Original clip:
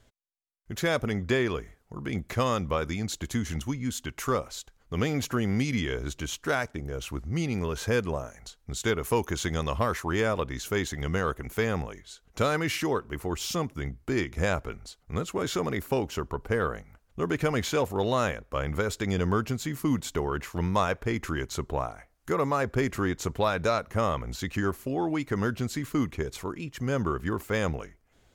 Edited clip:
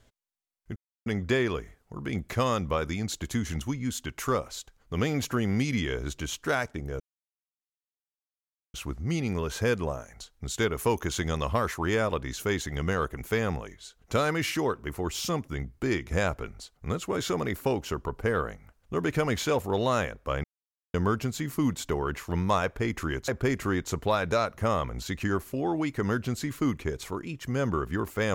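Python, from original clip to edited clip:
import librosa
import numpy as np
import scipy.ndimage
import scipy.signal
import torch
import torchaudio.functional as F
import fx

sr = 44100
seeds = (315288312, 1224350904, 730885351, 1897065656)

y = fx.edit(x, sr, fx.silence(start_s=0.76, length_s=0.3),
    fx.insert_silence(at_s=7.0, length_s=1.74),
    fx.silence(start_s=18.7, length_s=0.5),
    fx.cut(start_s=21.54, length_s=1.07), tone=tone)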